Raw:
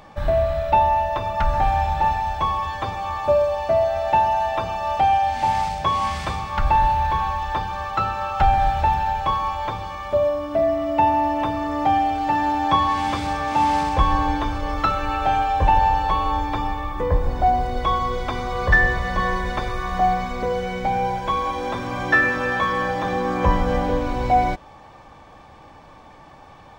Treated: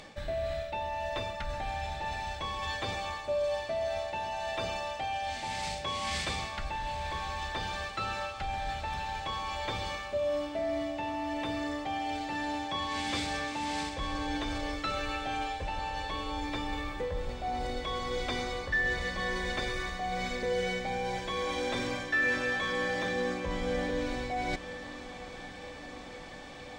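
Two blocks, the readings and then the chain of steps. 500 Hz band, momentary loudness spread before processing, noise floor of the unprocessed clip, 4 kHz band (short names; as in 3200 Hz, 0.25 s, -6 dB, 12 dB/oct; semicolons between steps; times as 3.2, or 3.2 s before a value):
-10.5 dB, 7 LU, -46 dBFS, -2.5 dB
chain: reverse; compressor 6:1, threshold -28 dBFS, peak gain reduction 16.5 dB; reverse; graphic EQ 250/500/1000/2000/4000/8000 Hz +4/+6/-6/+8/+9/+12 dB; diffused feedback echo 0.939 s, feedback 70%, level -15 dB; gain -5.5 dB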